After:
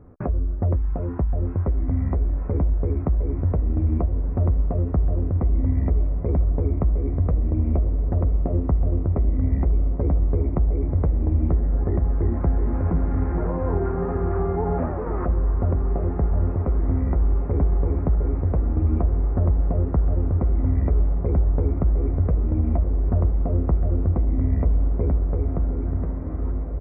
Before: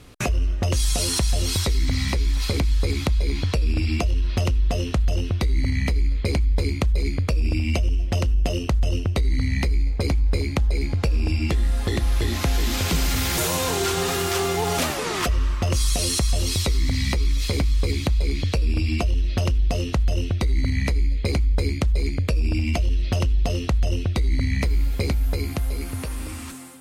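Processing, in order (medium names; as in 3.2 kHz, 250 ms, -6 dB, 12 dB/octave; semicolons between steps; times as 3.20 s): Gaussian low-pass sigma 7.7 samples; doubling 12 ms -10.5 dB; echo that smears into a reverb 1662 ms, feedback 78%, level -10.5 dB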